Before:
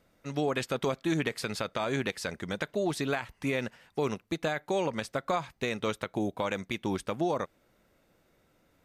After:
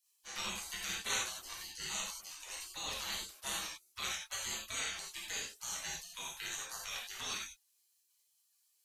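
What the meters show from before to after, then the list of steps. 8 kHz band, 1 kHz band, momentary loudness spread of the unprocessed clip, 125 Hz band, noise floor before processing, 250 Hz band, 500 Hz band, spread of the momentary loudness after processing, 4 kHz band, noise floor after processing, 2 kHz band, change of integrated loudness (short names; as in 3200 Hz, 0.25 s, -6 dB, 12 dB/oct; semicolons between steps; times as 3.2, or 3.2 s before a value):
+7.5 dB, -12.0 dB, 4 LU, -22.0 dB, -69 dBFS, -25.0 dB, -23.5 dB, 7 LU, +1.5 dB, -76 dBFS, -6.0 dB, -7.0 dB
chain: spectral gate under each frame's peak -30 dB weak; non-linear reverb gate 0.12 s flat, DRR -4.5 dB; gain +7 dB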